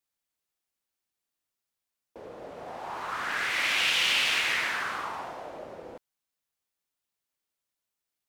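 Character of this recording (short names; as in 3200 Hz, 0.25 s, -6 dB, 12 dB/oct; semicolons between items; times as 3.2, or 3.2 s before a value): noise floor -87 dBFS; spectral tilt -2.0 dB/oct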